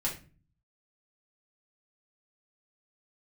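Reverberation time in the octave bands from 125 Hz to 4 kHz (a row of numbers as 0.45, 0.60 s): 0.85, 0.65, 0.40, 0.30, 0.35, 0.25 s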